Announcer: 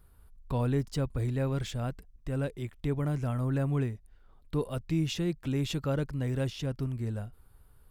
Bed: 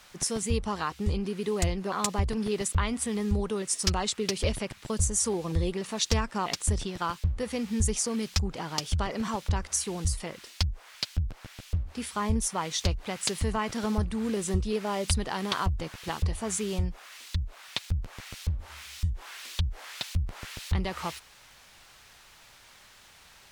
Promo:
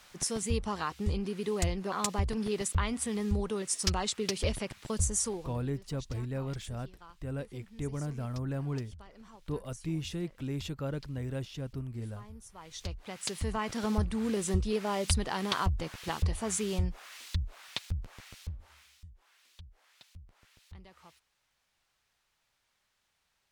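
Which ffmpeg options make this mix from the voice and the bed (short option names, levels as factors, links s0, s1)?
-filter_complex "[0:a]adelay=4950,volume=0.531[s0];[1:a]volume=7.94,afade=t=out:st=5.16:d=0.42:silence=0.105925,afade=t=in:st=12.51:d=1.47:silence=0.0891251,afade=t=out:st=17.25:d=1.79:silence=0.0841395[s1];[s0][s1]amix=inputs=2:normalize=0"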